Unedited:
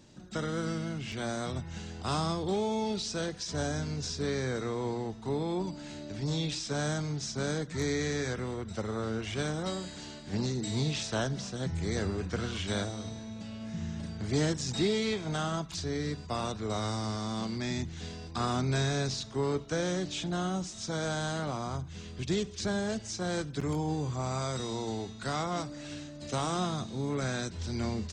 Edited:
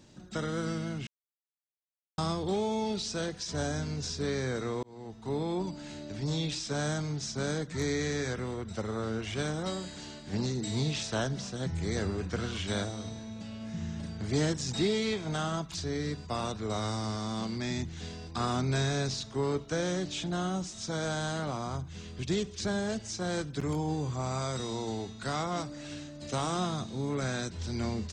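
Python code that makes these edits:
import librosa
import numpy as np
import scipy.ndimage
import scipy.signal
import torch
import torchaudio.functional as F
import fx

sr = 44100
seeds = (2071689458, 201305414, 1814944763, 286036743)

y = fx.edit(x, sr, fx.silence(start_s=1.07, length_s=1.11),
    fx.fade_in_span(start_s=4.83, length_s=0.55), tone=tone)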